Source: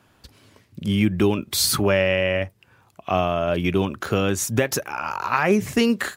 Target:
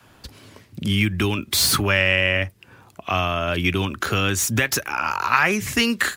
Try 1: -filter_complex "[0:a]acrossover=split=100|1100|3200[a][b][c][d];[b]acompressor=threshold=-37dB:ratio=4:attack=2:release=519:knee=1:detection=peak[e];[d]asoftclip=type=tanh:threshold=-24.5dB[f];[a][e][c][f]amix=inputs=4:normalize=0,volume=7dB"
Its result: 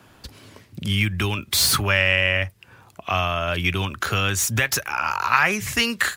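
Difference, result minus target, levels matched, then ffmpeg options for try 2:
250 Hz band -4.5 dB
-filter_complex "[0:a]acrossover=split=100|1100|3200[a][b][c][d];[b]acompressor=threshold=-37dB:ratio=4:attack=2:release=519:knee=1:detection=peak,adynamicequalizer=threshold=0.00251:dfrequency=280:dqfactor=0.97:tfrequency=280:tqfactor=0.97:attack=5:release=100:ratio=0.4:range=4:mode=boostabove:tftype=bell[e];[d]asoftclip=type=tanh:threshold=-24.5dB[f];[a][e][c][f]amix=inputs=4:normalize=0,volume=7dB"

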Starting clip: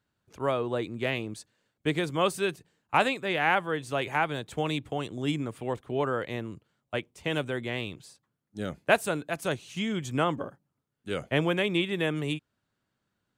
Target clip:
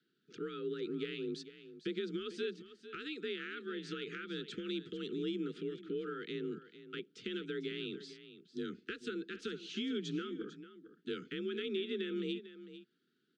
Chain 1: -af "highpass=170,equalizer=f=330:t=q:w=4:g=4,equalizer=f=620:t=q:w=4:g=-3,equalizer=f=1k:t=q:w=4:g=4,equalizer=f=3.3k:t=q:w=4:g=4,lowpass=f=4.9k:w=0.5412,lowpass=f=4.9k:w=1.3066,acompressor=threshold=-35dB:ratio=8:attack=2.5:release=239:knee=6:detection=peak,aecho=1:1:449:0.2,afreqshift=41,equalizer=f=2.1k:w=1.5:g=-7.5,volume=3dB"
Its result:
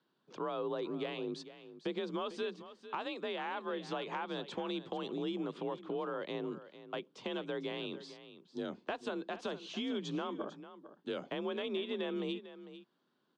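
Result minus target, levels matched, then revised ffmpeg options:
1000 Hz band +10.0 dB
-af "highpass=170,equalizer=f=330:t=q:w=4:g=4,equalizer=f=620:t=q:w=4:g=-3,equalizer=f=1k:t=q:w=4:g=4,equalizer=f=3.3k:t=q:w=4:g=4,lowpass=f=4.9k:w=0.5412,lowpass=f=4.9k:w=1.3066,acompressor=threshold=-35dB:ratio=8:attack=2.5:release=239:knee=6:detection=peak,asuperstop=centerf=730:order=20:qfactor=0.9,aecho=1:1:449:0.2,afreqshift=41,equalizer=f=2.1k:w=1.5:g=-7.5,volume=3dB"

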